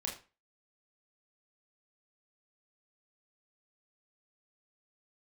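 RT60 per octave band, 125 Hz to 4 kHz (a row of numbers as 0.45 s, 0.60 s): 0.35 s, 0.35 s, 0.30 s, 0.35 s, 0.30 s, 0.30 s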